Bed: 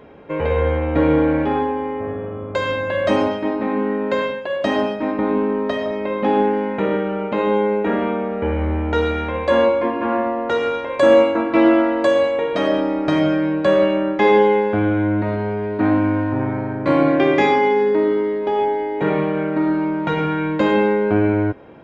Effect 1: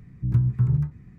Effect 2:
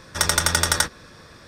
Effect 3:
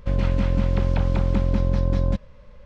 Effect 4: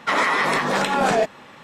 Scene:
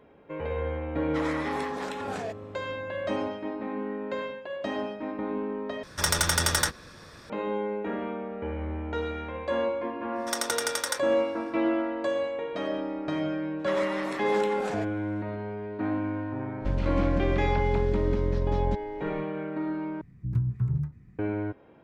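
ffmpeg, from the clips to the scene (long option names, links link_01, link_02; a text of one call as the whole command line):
ffmpeg -i bed.wav -i cue0.wav -i cue1.wav -i cue2.wav -i cue3.wav -filter_complex "[4:a]asplit=2[link_01][link_02];[2:a]asplit=2[link_03][link_04];[0:a]volume=-12.5dB[link_05];[link_03]asoftclip=type=tanh:threshold=-12dB[link_06];[link_04]highpass=frequency=470:width=0.5412,highpass=frequency=470:width=1.3066[link_07];[3:a]alimiter=limit=-14.5dB:level=0:latency=1:release=249[link_08];[link_05]asplit=3[link_09][link_10][link_11];[link_09]atrim=end=5.834[link_12];[link_06]atrim=end=1.47,asetpts=PTS-STARTPTS,volume=-2dB[link_13];[link_10]atrim=start=7.296:end=20.014[link_14];[1:a]atrim=end=1.18,asetpts=PTS-STARTPTS,volume=-6dB[link_15];[link_11]atrim=start=21.186[link_16];[link_01]atrim=end=1.63,asetpts=PTS-STARTPTS,volume=-16dB,afade=type=in:duration=0.1,afade=type=out:start_time=1.53:duration=0.1,adelay=1070[link_17];[link_07]atrim=end=1.47,asetpts=PTS-STARTPTS,volume=-10dB,afade=type=in:duration=0.1,afade=type=out:start_time=1.37:duration=0.1,adelay=10120[link_18];[link_02]atrim=end=1.63,asetpts=PTS-STARTPTS,volume=-16dB,afade=type=in:duration=0.004:curve=hsin,afade=type=out:start_time=1.626:duration=0.004:curve=hsin,adelay=13590[link_19];[link_08]atrim=end=2.65,asetpts=PTS-STARTPTS,volume=-2.5dB,afade=type=in:duration=0.05,afade=type=out:start_time=2.6:duration=0.05,adelay=16590[link_20];[link_12][link_13]acrossfade=duration=0.004:curve1=hsin:curve2=hsin[link_21];[link_21][link_14]acrossfade=duration=0.004:curve1=hsin:curve2=hsin[link_22];[link_22][link_15]acrossfade=duration=0.004:curve1=hsin:curve2=hsin[link_23];[link_23][link_16]acrossfade=duration=0.004:curve1=hsin:curve2=hsin[link_24];[link_24][link_17][link_18][link_19][link_20]amix=inputs=5:normalize=0" out.wav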